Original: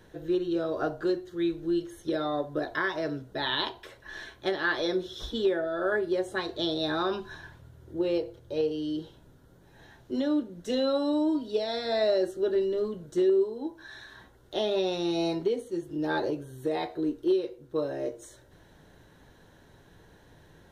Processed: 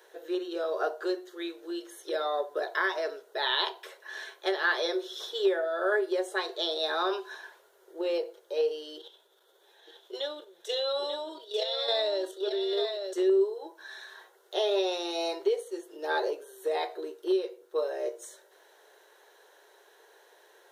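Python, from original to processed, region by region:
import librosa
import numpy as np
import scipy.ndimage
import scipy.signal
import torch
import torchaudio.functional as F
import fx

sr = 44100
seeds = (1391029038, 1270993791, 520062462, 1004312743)

y = fx.chain(x, sr, fx.level_steps(step_db=10),
    fx.peak_eq(hz=3500.0, db=15.0, octaves=0.29),
    fx.echo_single(ms=891, db=-6.0), at=(8.98, 13.13))
y = scipy.signal.sosfilt(scipy.signal.ellip(4, 1.0, 40, 390.0, 'highpass', fs=sr, output='sos'), y)
y = fx.high_shelf(y, sr, hz=7300.0, db=6.5)
y = y * librosa.db_to_amplitude(1.5)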